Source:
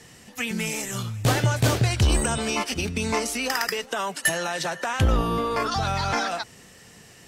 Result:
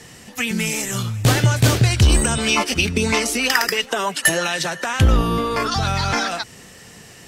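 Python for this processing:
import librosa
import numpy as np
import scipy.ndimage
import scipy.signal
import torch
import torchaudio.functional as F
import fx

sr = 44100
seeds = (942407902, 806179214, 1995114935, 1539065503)

y = fx.dynamic_eq(x, sr, hz=730.0, q=0.81, threshold_db=-37.0, ratio=4.0, max_db=-5)
y = fx.bell_lfo(y, sr, hz=3.0, low_hz=330.0, high_hz=3400.0, db=9, at=(2.42, 4.54), fade=0.02)
y = F.gain(torch.from_numpy(y), 6.5).numpy()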